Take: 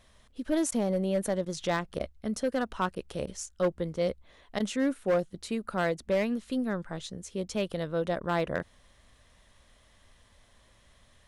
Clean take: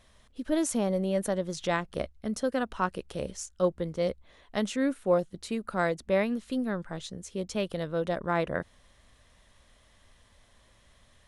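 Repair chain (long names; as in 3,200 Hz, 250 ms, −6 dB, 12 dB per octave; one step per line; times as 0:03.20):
clipped peaks rebuilt −20.5 dBFS
repair the gap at 0:00.71/0:01.45/0:01.99/0:02.95/0:03.26/0:04.59/0:08.20, 10 ms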